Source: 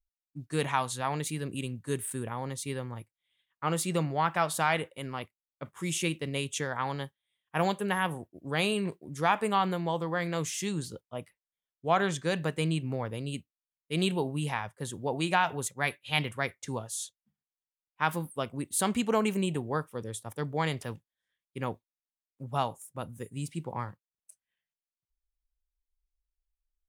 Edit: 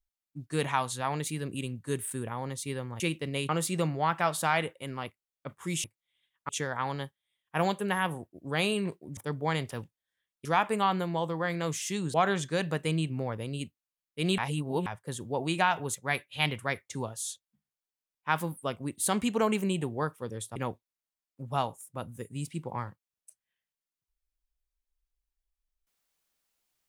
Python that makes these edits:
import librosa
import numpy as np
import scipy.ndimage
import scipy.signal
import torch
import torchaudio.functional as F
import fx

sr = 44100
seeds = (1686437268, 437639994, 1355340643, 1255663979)

y = fx.edit(x, sr, fx.swap(start_s=3.0, length_s=0.65, other_s=6.0, other_length_s=0.49),
    fx.cut(start_s=10.86, length_s=1.01),
    fx.reverse_span(start_s=14.11, length_s=0.48),
    fx.move(start_s=20.29, length_s=1.28, to_s=9.17), tone=tone)